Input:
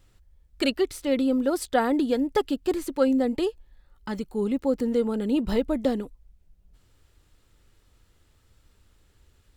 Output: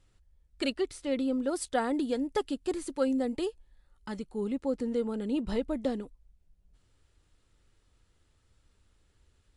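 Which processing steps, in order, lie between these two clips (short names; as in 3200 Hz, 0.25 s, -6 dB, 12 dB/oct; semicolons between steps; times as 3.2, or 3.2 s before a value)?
1.49–4.17 high shelf 9300 Hz +10.5 dB; gain -6 dB; MP3 80 kbps 24000 Hz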